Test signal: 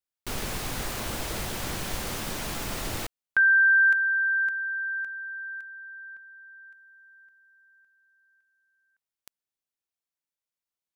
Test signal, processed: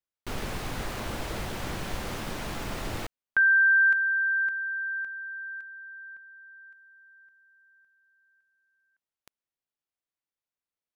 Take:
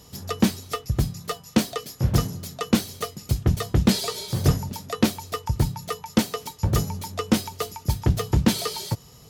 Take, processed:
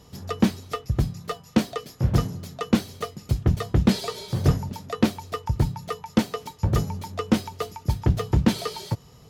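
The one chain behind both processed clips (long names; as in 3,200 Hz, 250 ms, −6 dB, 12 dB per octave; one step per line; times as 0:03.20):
high-shelf EQ 4,500 Hz −10.5 dB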